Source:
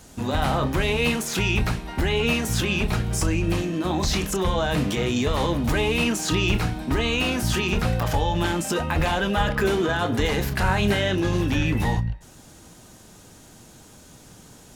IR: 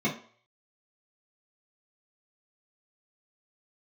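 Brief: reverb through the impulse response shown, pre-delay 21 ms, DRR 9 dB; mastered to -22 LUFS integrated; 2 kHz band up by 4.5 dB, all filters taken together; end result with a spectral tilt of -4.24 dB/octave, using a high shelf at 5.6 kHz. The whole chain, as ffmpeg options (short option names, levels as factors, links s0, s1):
-filter_complex "[0:a]equalizer=f=2000:t=o:g=7.5,highshelf=f=5600:g=-8.5,asplit=2[s0][s1];[1:a]atrim=start_sample=2205,adelay=21[s2];[s1][s2]afir=irnorm=-1:irlink=0,volume=0.106[s3];[s0][s3]amix=inputs=2:normalize=0,volume=0.891"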